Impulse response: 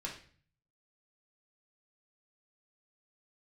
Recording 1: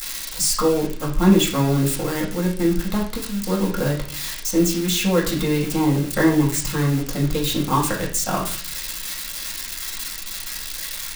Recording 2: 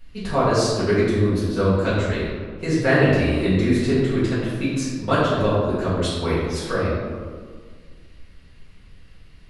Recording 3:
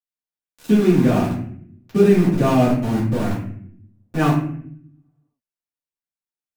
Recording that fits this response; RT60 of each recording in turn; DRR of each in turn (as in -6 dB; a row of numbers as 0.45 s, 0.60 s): 1; 0.45 s, 1.8 s, 0.65 s; -3.0 dB, -12.0 dB, -9.5 dB